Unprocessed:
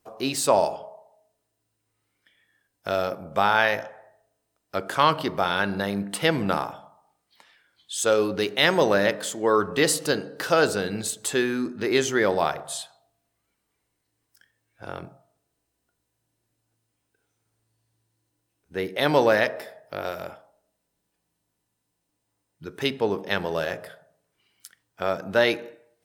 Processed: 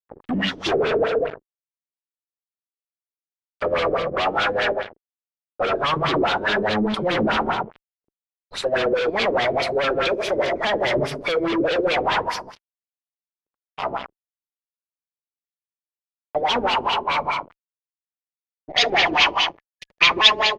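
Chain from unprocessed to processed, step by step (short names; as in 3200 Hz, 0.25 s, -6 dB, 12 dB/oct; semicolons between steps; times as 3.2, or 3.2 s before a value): speed glide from 69% -> 184%; spectral noise reduction 15 dB; feedback echo 81 ms, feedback 30%, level -7 dB; on a send at -15 dB: reverb RT60 0.65 s, pre-delay 46 ms; on the sum: flange 0.89 Hz, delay 4 ms, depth 2.4 ms, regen -39%; in parallel at +1 dB: negative-ratio compressor -28 dBFS, ratio -1; on the sum: fuzz box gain 39 dB, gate -46 dBFS; spectral gain 18.7–21.22, 1700–6900 Hz +11 dB; LFO low-pass sine 4.8 Hz 320–3700 Hz; gain -8.5 dB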